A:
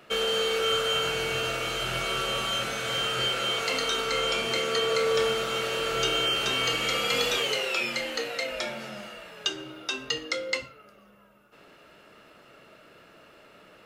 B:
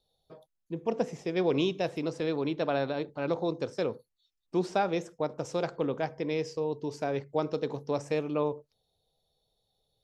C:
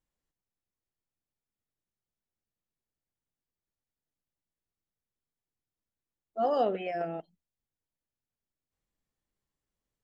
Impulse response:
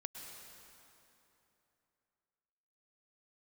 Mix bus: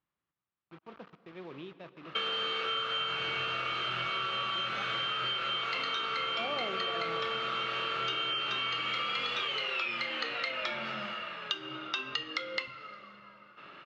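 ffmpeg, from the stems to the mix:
-filter_complex "[0:a]aemphasis=mode=production:type=75kf,adelay=2050,volume=0dB,asplit=2[a][b];[b]volume=-14.5dB[c];[1:a]acrusher=bits=5:mix=0:aa=0.000001,volume=-18dB,asplit=2[d][e];[e]volume=-5.5dB[f];[2:a]volume=0dB,asplit=2[g][h];[h]volume=-5dB[i];[3:a]atrim=start_sample=2205[j];[c][f][i]amix=inputs=3:normalize=0[k];[k][j]afir=irnorm=-1:irlink=0[l];[a][d][g][l]amix=inputs=4:normalize=0,highpass=110,equalizer=f=250:t=q:w=4:g=-5,equalizer=f=470:t=q:w=4:g=-7,equalizer=f=710:t=q:w=4:g=-4,equalizer=f=1.2k:t=q:w=4:g=8,lowpass=f=3.4k:w=0.5412,lowpass=f=3.4k:w=1.3066,acompressor=threshold=-31dB:ratio=6"

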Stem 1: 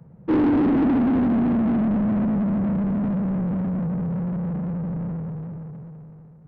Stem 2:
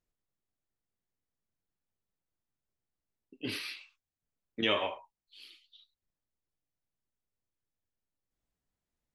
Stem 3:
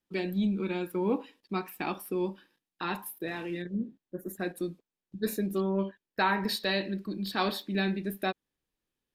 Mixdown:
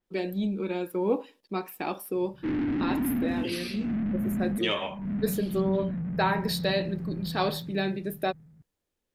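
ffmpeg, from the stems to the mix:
-filter_complex "[0:a]equalizer=f=500:t=o:w=1:g=-10,equalizer=f=1k:t=o:w=1:g=-9,equalizer=f=2k:t=o:w=1:g=5,adelay=2150,volume=-6dB[a];[1:a]acontrast=88,volume=-7dB,asplit=2[b][c];[2:a]equalizer=f=550:w=1.2:g=8,volume=-2dB[d];[c]apad=whole_len=380285[e];[a][e]sidechaincompress=threshold=-54dB:ratio=3:attack=16:release=119[f];[f][b][d]amix=inputs=3:normalize=0,adynamicequalizer=threshold=0.00562:dfrequency=4300:dqfactor=0.7:tfrequency=4300:tqfactor=0.7:attack=5:release=100:ratio=0.375:range=2.5:mode=boostabove:tftype=highshelf"

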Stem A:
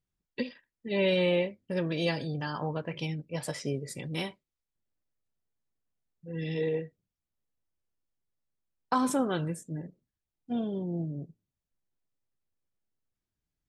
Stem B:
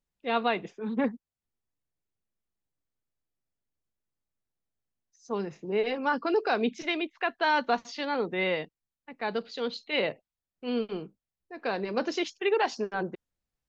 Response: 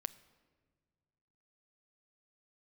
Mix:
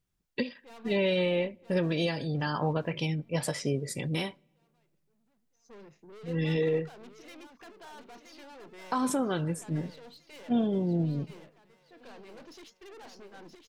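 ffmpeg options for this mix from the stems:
-filter_complex "[0:a]acontrast=72,volume=-2.5dB,asplit=2[a][b];[b]volume=-16dB[c];[1:a]aeval=exprs='(tanh(70.8*val(0)+0.35)-tanh(0.35))/70.8':c=same,adelay=400,volume=-10.5dB,asplit=2[d][e];[e]volume=-6.5dB[f];[2:a]atrim=start_sample=2205[g];[c][g]afir=irnorm=-1:irlink=0[h];[f]aecho=0:1:973|1946|2919|3892|4865|5838|6811:1|0.47|0.221|0.104|0.0488|0.0229|0.0108[i];[a][d][h][i]amix=inputs=4:normalize=0,alimiter=limit=-18.5dB:level=0:latency=1:release=419"

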